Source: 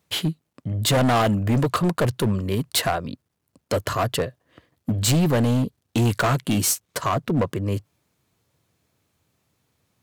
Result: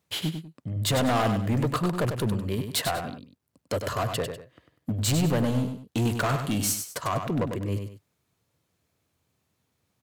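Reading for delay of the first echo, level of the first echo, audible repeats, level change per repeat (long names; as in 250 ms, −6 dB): 98 ms, −7.0 dB, 2, −10.0 dB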